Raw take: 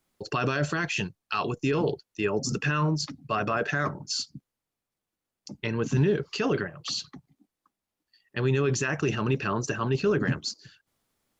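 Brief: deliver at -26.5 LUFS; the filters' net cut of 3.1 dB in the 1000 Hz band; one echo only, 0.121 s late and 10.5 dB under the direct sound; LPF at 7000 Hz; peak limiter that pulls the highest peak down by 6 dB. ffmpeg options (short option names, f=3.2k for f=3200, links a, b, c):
-af "lowpass=7k,equalizer=f=1k:t=o:g=-4,alimiter=limit=-19.5dB:level=0:latency=1,aecho=1:1:121:0.299,volume=4dB"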